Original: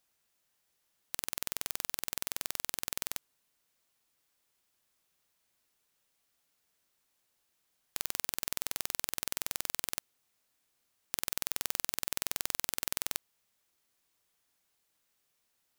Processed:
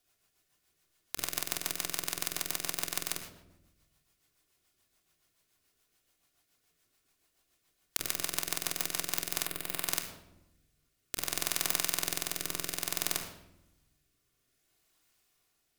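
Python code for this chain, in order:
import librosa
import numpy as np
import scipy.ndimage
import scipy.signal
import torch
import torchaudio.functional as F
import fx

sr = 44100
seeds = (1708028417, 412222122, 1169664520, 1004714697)

y = fx.room_shoebox(x, sr, seeds[0], volume_m3=3500.0, walls='furnished', distance_m=3.3)
y = fx.rotary_switch(y, sr, hz=7.0, then_hz=0.6, switch_at_s=8.83)
y = fx.peak_eq(y, sr, hz=6100.0, db=-10.0, octaves=0.73, at=(9.46, 9.88))
y = y * librosa.db_to_amplitude(4.0)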